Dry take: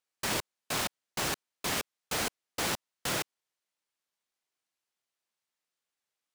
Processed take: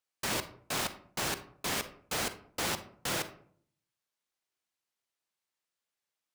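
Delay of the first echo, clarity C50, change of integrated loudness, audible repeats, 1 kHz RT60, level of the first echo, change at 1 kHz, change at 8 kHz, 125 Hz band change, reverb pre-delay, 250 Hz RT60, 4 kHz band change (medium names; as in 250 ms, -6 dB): no echo, 12.5 dB, -1.5 dB, no echo, 0.50 s, no echo, -1.0 dB, -1.5 dB, -1.0 dB, 38 ms, 0.75 s, -1.5 dB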